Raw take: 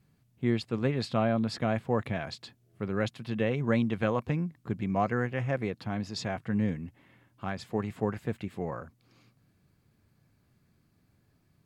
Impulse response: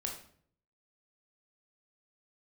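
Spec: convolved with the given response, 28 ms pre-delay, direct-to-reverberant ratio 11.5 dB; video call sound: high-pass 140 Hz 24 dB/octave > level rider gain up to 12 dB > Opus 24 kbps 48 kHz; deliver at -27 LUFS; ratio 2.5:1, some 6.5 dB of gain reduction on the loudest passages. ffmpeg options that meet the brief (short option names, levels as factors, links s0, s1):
-filter_complex "[0:a]acompressor=threshold=0.0251:ratio=2.5,asplit=2[s0][s1];[1:a]atrim=start_sample=2205,adelay=28[s2];[s1][s2]afir=irnorm=-1:irlink=0,volume=0.251[s3];[s0][s3]amix=inputs=2:normalize=0,highpass=f=140:w=0.5412,highpass=f=140:w=1.3066,dynaudnorm=m=3.98,volume=3.16" -ar 48000 -c:a libopus -b:a 24k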